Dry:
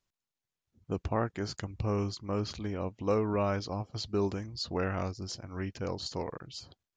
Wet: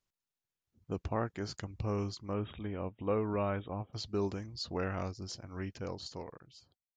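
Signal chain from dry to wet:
fade-out on the ending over 1.28 s
0:02.33–0:03.93: linear-phase brick-wall low-pass 3,800 Hz
level −3.5 dB

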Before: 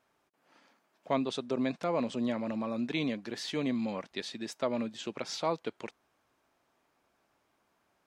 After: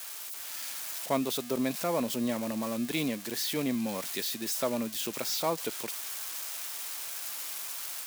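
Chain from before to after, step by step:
spike at every zero crossing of −28 dBFS
automatic gain control gain up to 3.5 dB
level −2.5 dB

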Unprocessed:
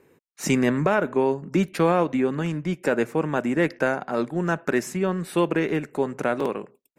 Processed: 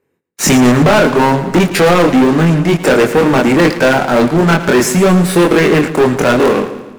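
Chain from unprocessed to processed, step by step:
chorus effect 0.57 Hz, depth 2.1 ms
leveller curve on the samples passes 5
echo with a time of its own for lows and highs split 460 Hz, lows 149 ms, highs 112 ms, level −13 dB
level +4.5 dB

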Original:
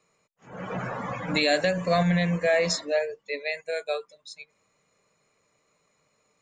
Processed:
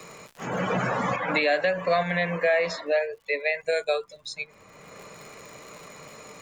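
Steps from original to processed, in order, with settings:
0:01.16–0:03.63: three-way crossover with the lows and the highs turned down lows −13 dB, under 430 Hz, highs −20 dB, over 3,600 Hz
surface crackle 130 per second −59 dBFS
multiband upward and downward compressor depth 70%
level +4.5 dB

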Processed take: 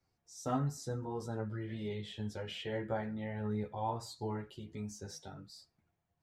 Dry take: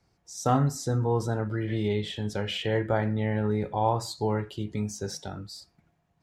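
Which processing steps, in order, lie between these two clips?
multi-voice chorus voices 4, 0.48 Hz, delay 11 ms, depth 3.3 ms
level −8 dB

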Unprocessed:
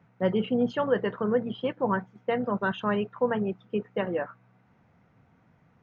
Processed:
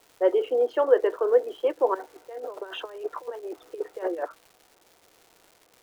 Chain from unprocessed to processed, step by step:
0:01.94–0:04.25: compressor whose output falls as the input rises −34 dBFS, ratio −0.5
Butterworth high-pass 310 Hz 72 dB per octave
parametric band 450 Hz +12 dB 2.7 octaves
surface crackle 390 per second −38 dBFS
level −5.5 dB

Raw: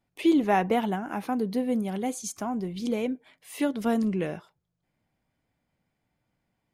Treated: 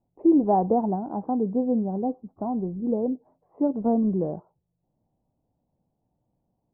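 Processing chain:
Butterworth low-pass 900 Hz 36 dB per octave
level +3 dB

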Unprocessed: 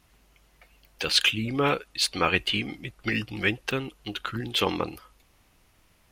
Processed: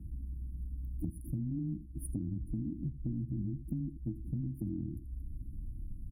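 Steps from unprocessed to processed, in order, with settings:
frequency shifter +13 Hz
linear-phase brick-wall band-stop 340–9,300 Hz
spectral tilt −4 dB per octave
brickwall limiter −20 dBFS, peak gain reduction 9 dB
single-tap delay 83 ms −16.5 dB
downward compressor 6 to 1, threshold −42 dBFS, peak gain reduction 17.5 dB
level +7 dB

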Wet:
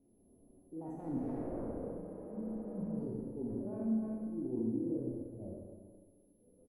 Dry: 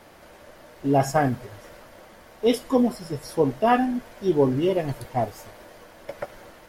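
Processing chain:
spectrum averaged block by block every 50 ms
source passing by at 0:01.55, 47 m/s, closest 4.5 metres
in parallel at −3 dB: bit reduction 5 bits
on the sum: low-pass that shuts in the quiet parts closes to 320 Hz, open at −36.5 dBFS
far-end echo of a speakerphone 300 ms, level −17 dB
transient designer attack −5 dB, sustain +10 dB
reversed playback
downward compressor 12 to 1, threshold −50 dBFS, peak gain reduction 21 dB
reversed playback
steady tone 11,000 Hz −68 dBFS
drawn EQ curve 160 Hz 0 dB, 280 Hz +9 dB, 3,400 Hz −29 dB
four-comb reverb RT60 1.5 s, combs from 32 ms, DRR −1.5 dB
healed spectral selection 0:02.05–0:02.98, 220–11,000 Hz before
level +9.5 dB

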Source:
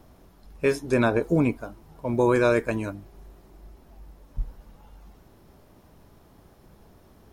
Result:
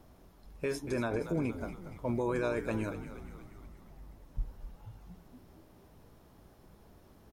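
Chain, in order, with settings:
brickwall limiter −19 dBFS, peak gain reduction 8.5 dB
echo with shifted repeats 235 ms, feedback 59%, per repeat −72 Hz, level −11 dB
level −5 dB

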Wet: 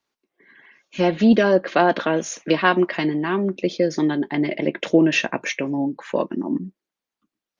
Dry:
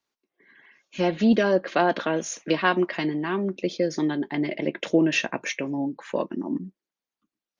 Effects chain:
high-shelf EQ 6,000 Hz −5 dB
level +4.5 dB

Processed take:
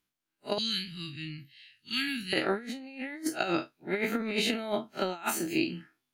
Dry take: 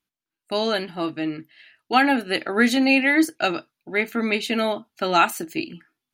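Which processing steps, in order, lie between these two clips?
spectrum smeared in time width 81 ms
0:00.58–0:02.33: Chebyshev band-stop filter 120–3,400 Hz, order 2
compressor whose output falls as the input rises −28 dBFS, ratio −0.5
level −2 dB

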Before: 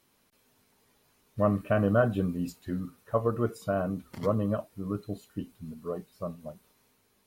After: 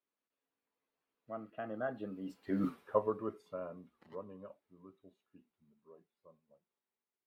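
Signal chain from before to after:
source passing by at 0:02.68, 25 m/s, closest 1.3 metres
three-way crossover with the lows and the highs turned down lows −16 dB, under 220 Hz, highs −16 dB, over 3,600 Hz
level +11.5 dB

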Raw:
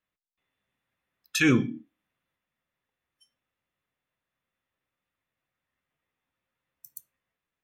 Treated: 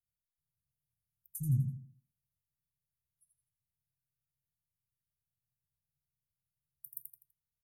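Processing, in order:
Chebyshev band-stop filter 150–9,900 Hz, order 4
on a send: repeating echo 83 ms, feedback 35%, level −5.5 dB

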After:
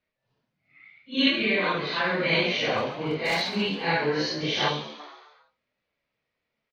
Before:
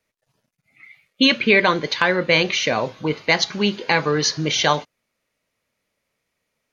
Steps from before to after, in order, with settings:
random phases in long frames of 200 ms
low-pass filter 4,500 Hz 24 dB per octave
0:01.28–0:02.24: downward compressor 3 to 1, threshold −17 dBFS, peak gain reduction 5.5 dB
0:02.77–0:03.42: hard clipping −15.5 dBFS, distortion −23 dB
0:03.94–0:04.41: notch comb filter 1,200 Hz
echo with shifted repeats 137 ms, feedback 48%, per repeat +74 Hz, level −12 dB
0:04.68–0:05.00: gain on a spectral selection 580–2,200 Hz −9 dB
level −5 dB

